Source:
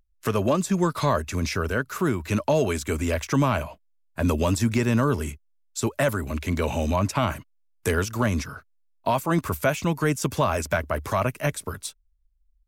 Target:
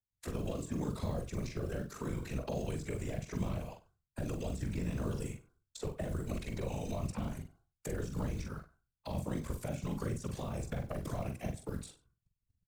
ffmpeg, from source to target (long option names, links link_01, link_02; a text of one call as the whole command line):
ffmpeg -i in.wav -filter_complex "[0:a]bandreject=frequency=364.8:width_type=h:width=4,bandreject=frequency=729.6:width_type=h:width=4,bandreject=frequency=1094.4:width_type=h:width=4,bandreject=frequency=1459.2:width_type=h:width=4,agate=range=-33dB:threshold=-53dB:ratio=3:detection=peak,equalizer=frequency=125:width_type=o:width=1:gain=8,equalizer=frequency=250:width_type=o:width=1:gain=-5,equalizer=frequency=500:width_type=o:width=1:gain=6,equalizer=frequency=1000:width_type=o:width=1:gain=5,equalizer=frequency=2000:width_type=o:width=1:gain=7,equalizer=frequency=4000:width_type=o:width=1:gain=7,equalizer=frequency=8000:width_type=o:width=1:gain=11,acrossover=split=120|520|2600[link_01][link_02][link_03][link_04];[link_01]acompressor=threshold=-35dB:ratio=4[link_05];[link_02]acompressor=threshold=-33dB:ratio=4[link_06];[link_03]acompressor=threshold=-36dB:ratio=4[link_07];[link_04]acompressor=threshold=-37dB:ratio=4[link_08];[link_05][link_06][link_07][link_08]amix=inputs=4:normalize=0,acrossover=split=580[link_09][link_10];[link_09]alimiter=level_in=2.5dB:limit=-24dB:level=0:latency=1:release=38,volume=-2.5dB[link_11];[link_10]acompressor=threshold=-45dB:ratio=10[link_12];[link_11][link_12]amix=inputs=2:normalize=0,acrusher=bits=7:mode=log:mix=0:aa=0.000001,tremolo=f=54:d=0.947,afftfilt=real='hypot(re,im)*cos(2*PI*random(0))':imag='hypot(re,im)*sin(2*PI*random(1))':win_size=512:overlap=0.75,asplit=2[link_13][link_14];[link_14]adelay=45,volume=-6dB[link_15];[link_13][link_15]amix=inputs=2:normalize=0,asplit=2[link_16][link_17];[link_17]aecho=0:1:96:0.1[link_18];[link_16][link_18]amix=inputs=2:normalize=0,volume=5.5dB" out.wav